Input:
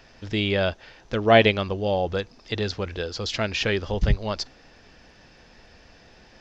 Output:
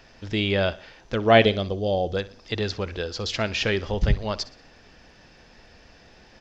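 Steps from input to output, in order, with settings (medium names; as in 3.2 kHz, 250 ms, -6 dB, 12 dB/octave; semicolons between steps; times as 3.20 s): time-frequency box 1.45–2.17 s, 790–3000 Hz -9 dB; feedback delay 61 ms, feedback 46%, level -18.5 dB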